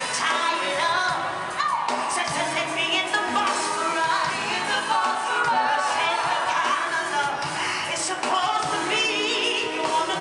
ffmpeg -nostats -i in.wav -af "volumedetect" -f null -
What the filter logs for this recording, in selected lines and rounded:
mean_volume: -24.0 dB
max_volume: -9.7 dB